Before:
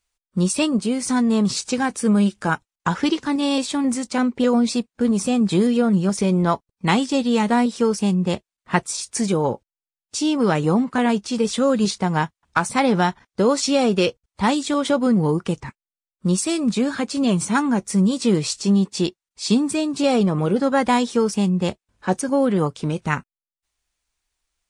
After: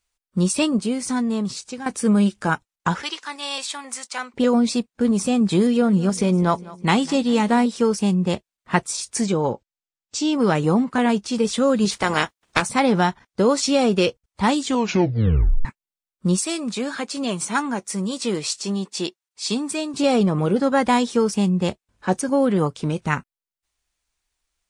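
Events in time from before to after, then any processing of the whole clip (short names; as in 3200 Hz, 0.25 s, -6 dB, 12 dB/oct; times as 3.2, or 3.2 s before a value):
0.68–1.86 fade out, to -12.5 dB
3.02–4.34 HPF 1000 Hz
5.61–7.66 feedback echo 0.201 s, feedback 50%, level -20 dB
9.24–10.33 elliptic low-pass 8000 Hz
11.91–12.61 spectral limiter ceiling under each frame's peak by 21 dB
14.62 tape stop 1.03 s
16.39–19.94 HPF 500 Hz 6 dB/oct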